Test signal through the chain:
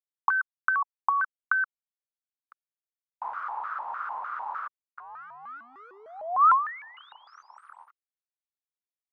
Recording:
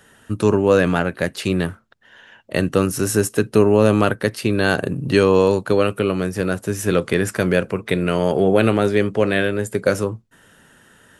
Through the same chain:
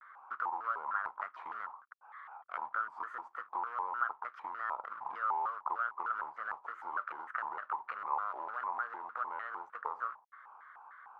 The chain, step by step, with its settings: in parallel at +2.5 dB: limiter -12.5 dBFS; on the sum: compressor 16:1, threshold -19 dBFS; companded quantiser 4-bit; Butterworth band-pass 1100 Hz, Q 4.1; shaped vibrato square 3.3 Hz, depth 250 cents; gain +4 dB

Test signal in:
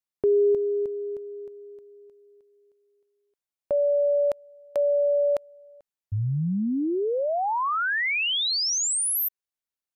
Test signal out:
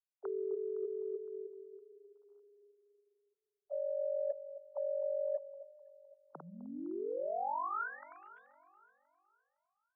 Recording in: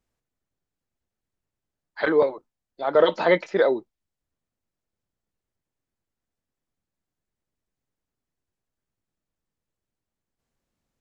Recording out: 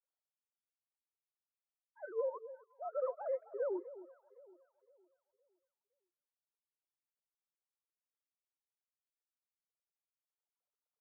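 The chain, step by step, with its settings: sine-wave speech; Chebyshev low-pass 1400 Hz, order 5; reverse; compressor 5:1, threshold -32 dBFS; reverse; Bessel high-pass 370 Hz, order 8; on a send: echo with dull and thin repeats by turns 0.256 s, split 900 Hz, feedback 57%, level -14 dB; on the sum: gain -2.5 dB; Vorbis 192 kbps 44100 Hz

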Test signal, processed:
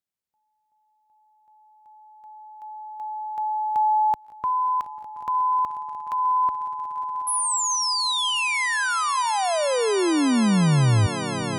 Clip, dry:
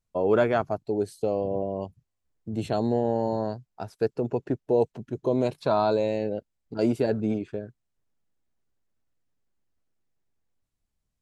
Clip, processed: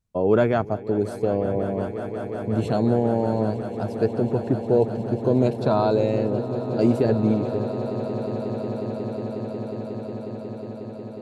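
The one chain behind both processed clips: HPF 70 Hz 6 dB/oct; low shelf 270 Hz +10.5 dB; swelling echo 0.181 s, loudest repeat 8, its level -16.5 dB

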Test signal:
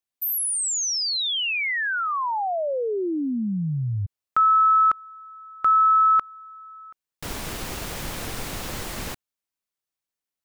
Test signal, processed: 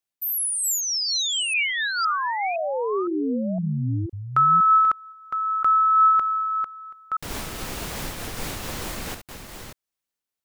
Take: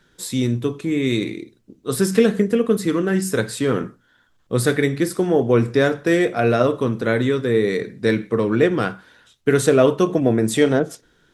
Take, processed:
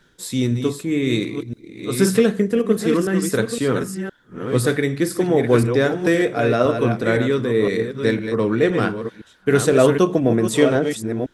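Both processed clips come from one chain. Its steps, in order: reverse delay 0.512 s, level -7 dB; noise-modulated level, depth 50%; gain +3 dB

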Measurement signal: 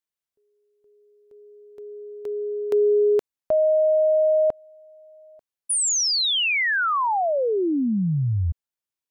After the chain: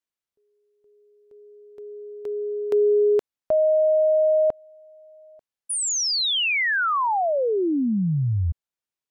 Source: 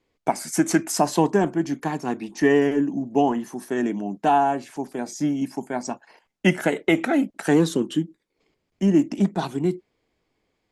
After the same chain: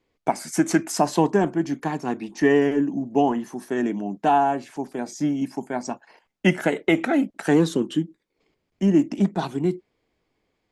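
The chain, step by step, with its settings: high shelf 8300 Hz -6.5 dB

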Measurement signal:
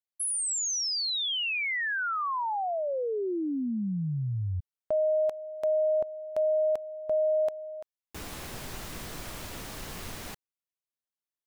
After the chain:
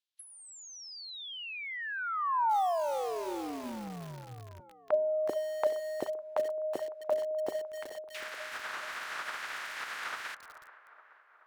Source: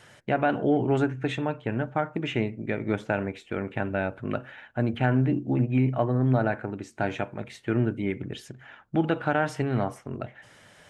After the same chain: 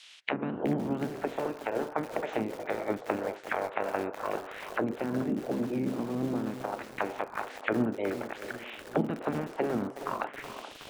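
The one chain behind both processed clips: spectral limiter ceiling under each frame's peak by 24 dB; de-hum 131.1 Hz, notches 3; in parallel at +1.5 dB: compressor 8:1, threshold -33 dBFS; on the sum: auto-wah 230–3600 Hz, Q 2.3, down, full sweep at -19 dBFS; vocal rider within 4 dB 2 s; band-limited delay 0.428 s, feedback 57%, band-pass 800 Hz, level -12 dB; lo-fi delay 0.37 s, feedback 80%, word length 6-bit, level -12 dB

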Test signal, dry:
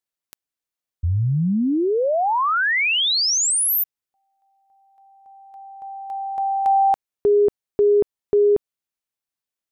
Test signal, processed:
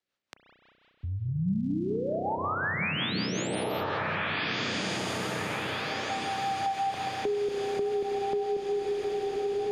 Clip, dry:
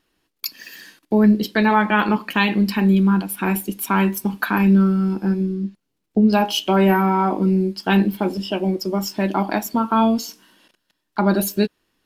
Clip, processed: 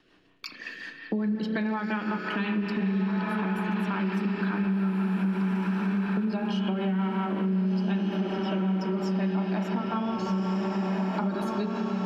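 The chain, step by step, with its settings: LPF 4100 Hz 12 dB/oct; spring tank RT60 3.7 s, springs 32 ms, chirp 55 ms, DRR 2 dB; rotary speaker horn 5.5 Hz; on a send: diffused feedback echo 1.565 s, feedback 46%, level -5 dB; on the sum: compressor, threshold -24 dBFS; dynamic EQ 180 Hz, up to +8 dB, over -42 dBFS, Q 3.1; in parallel at -2 dB: limiter -22.5 dBFS; on the sum: low shelf 110 Hz -8 dB; three-band squash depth 40%; gain -6.5 dB

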